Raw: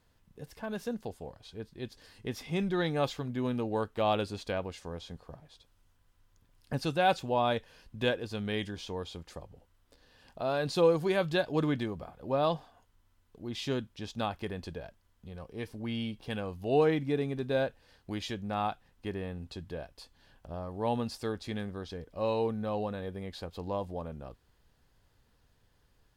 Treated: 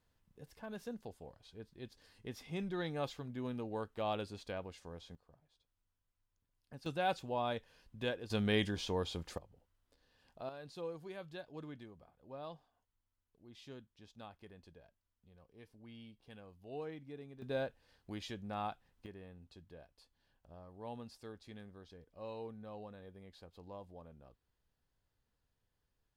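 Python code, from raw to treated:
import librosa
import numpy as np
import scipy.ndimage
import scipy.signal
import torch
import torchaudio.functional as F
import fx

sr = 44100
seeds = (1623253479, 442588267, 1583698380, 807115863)

y = fx.gain(x, sr, db=fx.steps((0.0, -9.0), (5.15, -18.5), (6.86, -8.5), (8.3, 1.5), (9.38, -11.0), (10.49, -19.0), (17.42, -8.0), (19.06, -15.5)))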